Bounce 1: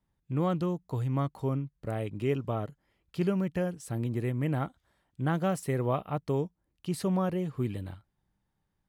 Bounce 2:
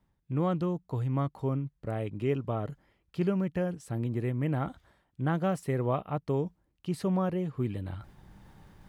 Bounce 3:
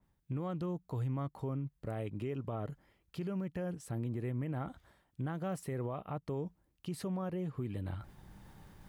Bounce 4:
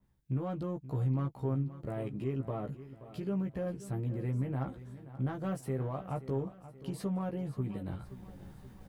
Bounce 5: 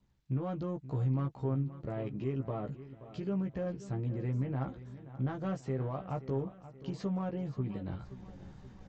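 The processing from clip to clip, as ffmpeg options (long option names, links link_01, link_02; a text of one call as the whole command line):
ffmpeg -i in.wav -af "highshelf=frequency=4400:gain=-8,areverse,acompressor=mode=upward:threshold=-32dB:ratio=2.5,areverse" out.wav
ffmpeg -i in.wav -af "highshelf=frequency=7600:gain=7,alimiter=level_in=4.5dB:limit=-24dB:level=0:latency=1:release=138,volume=-4.5dB,adynamicequalizer=threshold=0.00141:dfrequency=2700:dqfactor=0.7:tfrequency=2700:tqfactor=0.7:attack=5:release=100:ratio=0.375:range=2:mode=cutabove:tftype=highshelf,volume=-1.5dB" out.wav
ffmpeg -i in.wav -filter_complex "[0:a]asplit=2[link_01][link_02];[link_02]adynamicsmooth=sensitivity=5:basefreq=530,volume=-4dB[link_03];[link_01][link_03]amix=inputs=2:normalize=0,asplit=2[link_04][link_05];[link_05]adelay=15,volume=-3.5dB[link_06];[link_04][link_06]amix=inputs=2:normalize=0,aecho=1:1:528|1056|1584|2112|2640:0.178|0.0907|0.0463|0.0236|0.012,volume=-3dB" out.wav
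ffmpeg -i in.wav -ar 16000 -c:a sbc -b:a 64k out.sbc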